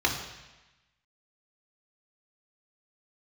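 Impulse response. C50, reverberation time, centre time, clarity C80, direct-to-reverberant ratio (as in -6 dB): 6.5 dB, 1.1 s, 31 ms, 8.5 dB, -0.5 dB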